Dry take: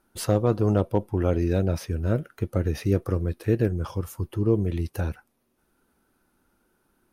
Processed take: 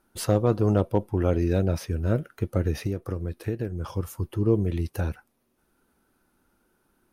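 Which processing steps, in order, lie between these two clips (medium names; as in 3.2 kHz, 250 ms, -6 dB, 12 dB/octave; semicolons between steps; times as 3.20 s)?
2.86–3.88 s: compression 6:1, threshold -25 dBFS, peak gain reduction 9.5 dB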